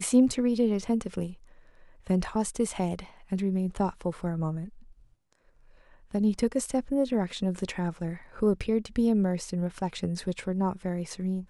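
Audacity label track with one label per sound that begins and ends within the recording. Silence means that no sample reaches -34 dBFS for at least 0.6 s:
2.100000	4.650000	sound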